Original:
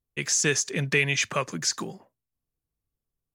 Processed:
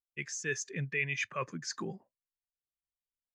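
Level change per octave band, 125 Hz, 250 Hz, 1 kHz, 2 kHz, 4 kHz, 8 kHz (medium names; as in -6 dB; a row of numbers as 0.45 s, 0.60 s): -9.0 dB, -9.5 dB, -8.0 dB, -8.5 dB, -15.0 dB, -15.0 dB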